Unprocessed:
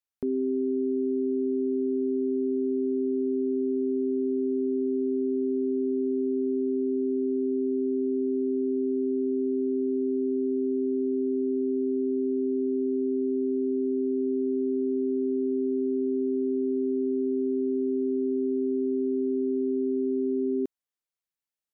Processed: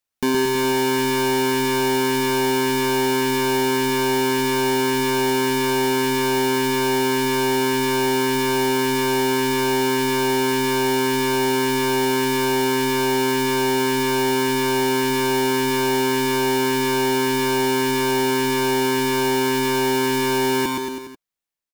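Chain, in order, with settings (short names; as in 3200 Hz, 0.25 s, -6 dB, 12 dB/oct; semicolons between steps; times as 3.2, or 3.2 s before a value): half-waves squared off; reverb removal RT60 1.5 s; AGC gain up to 6.5 dB; soft clip -22.5 dBFS, distortion -20 dB; on a send: bouncing-ball echo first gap 0.12 s, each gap 0.9×, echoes 5; on the sum: gain +7 dB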